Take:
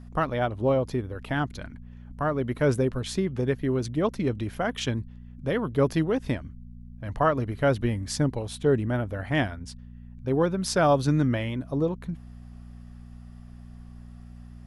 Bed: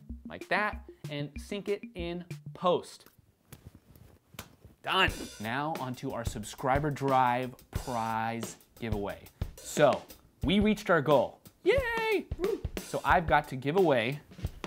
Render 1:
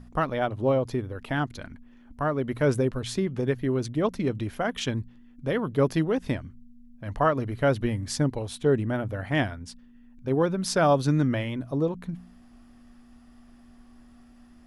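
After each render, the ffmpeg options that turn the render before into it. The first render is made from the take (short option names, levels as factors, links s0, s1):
-af "bandreject=f=60:t=h:w=4,bandreject=f=120:t=h:w=4,bandreject=f=180:t=h:w=4"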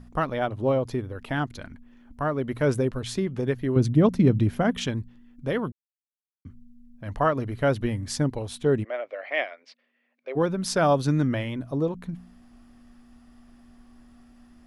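-filter_complex "[0:a]asettb=1/sr,asplit=3[s0][s1][s2];[s0]atrim=end=3.764[s3];[s1]atrim=start=3.76:end=4.87,asetpts=PTS-STARTPTS,afade=t=in:d=0.004:c=qsin,afade=t=out:st=1.106:d=0.004:c=qsin,equalizer=f=150:w=0.54:g=11.5[s4];[s2]atrim=start=4.866[s5];[s3][s4]acrossfade=d=0.004:c1=hsin:c2=qsin[s6];[s6][s5]acrossfade=d=0.004:c1=qsin:c2=hsin,asplit=3[s7][s8][s9];[s7]afade=t=out:st=8.83:d=0.02[s10];[s8]highpass=f=500:w=0.5412,highpass=f=500:w=1.3066,equalizer=f=580:t=q:w=4:g=6,equalizer=f=900:t=q:w=4:g=-9,equalizer=f=1500:t=q:w=4:g=-6,equalizer=f=2200:t=q:w=4:g=9,equalizer=f=3500:t=q:w=4:g=-4,lowpass=f=4400:w=0.5412,lowpass=f=4400:w=1.3066,afade=t=in:st=8.83:d=0.02,afade=t=out:st=10.35:d=0.02[s11];[s9]afade=t=in:st=10.35:d=0.02[s12];[s10][s11][s12]amix=inputs=3:normalize=0,asplit=3[s13][s14][s15];[s13]atrim=end=5.72,asetpts=PTS-STARTPTS,afade=t=out:st=5.716:d=0.004:c=hsin[s16];[s14]atrim=start=5.72:end=6.45,asetpts=PTS-STARTPTS,volume=0[s17];[s15]atrim=start=6.45,asetpts=PTS-STARTPTS,afade=t=in:d=0.004:c=hsin[s18];[s16][s17][s18]concat=n=3:v=0:a=1"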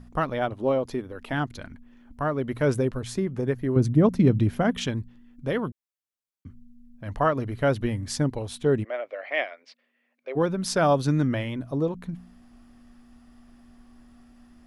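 -filter_complex "[0:a]asettb=1/sr,asplit=3[s0][s1][s2];[s0]atrim=end=0.534[s3];[s1]atrim=start=0.53:end=1.33,asetpts=PTS-STARTPTS,afade=t=in:d=0.004:c=qsin,afade=t=out:st=0.796:d=0.004:c=qsin,equalizer=f=110:t=o:w=0.47:g=-15[s4];[s2]atrim=start=1.326[s5];[s3][s4]acrossfade=d=0.004:c1=hsin:c2=qsin[s6];[s6][s5]acrossfade=d=0.004:c1=qsin:c2=hsin,asettb=1/sr,asplit=3[s7][s8][s9];[s7]atrim=end=2.974[s10];[s8]atrim=start=2.97:end=4.15,asetpts=PTS-STARTPTS,afade=t=in:d=0.004:c=qsin,afade=t=out:st=1.176:d=0.004:c=qsin,equalizer=f=3400:w=1.2:g=-6.5[s11];[s9]atrim=start=4.146[s12];[s10][s11]acrossfade=d=0.004:c1=hsin:c2=qsin[s13];[s13][s12]acrossfade=d=0.004:c1=qsin:c2=hsin"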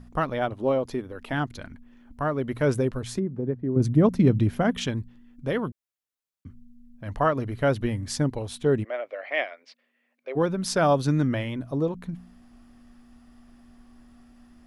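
-filter_complex "[0:a]asplit=3[s0][s1][s2];[s0]afade=t=out:st=3.18:d=0.02[s3];[s1]bandpass=f=220:t=q:w=0.69,afade=t=in:st=3.18:d=0.02,afade=t=out:st=3.79:d=0.02[s4];[s2]afade=t=in:st=3.79:d=0.02[s5];[s3][s4][s5]amix=inputs=3:normalize=0"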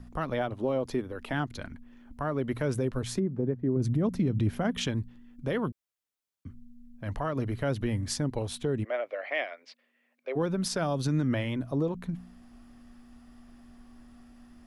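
-filter_complex "[0:a]acrossover=split=300|3000[s0][s1][s2];[s1]acompressor=threshold=0.0708:ratio=6[s3];[s0][s3][s2]amix=inputs=3:normalize=0,alimiter=limit=0.112:level=0:latency=1:release=120"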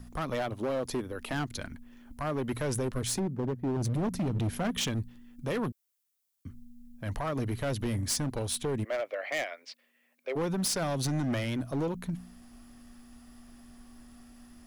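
-af "crystalizer=i=2:c=0,volume=21.1,asoftclip=hard,volume=0.0473"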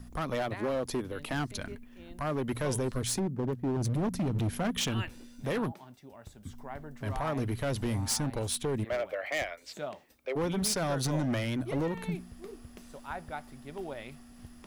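-filter_complex "[1:a]volume=0.178[s0];[0:a][s0]amix=inputs=2:normalize=0"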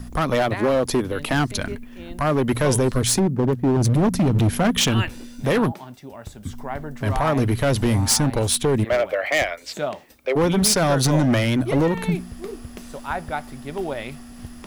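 -af "volume=3.98"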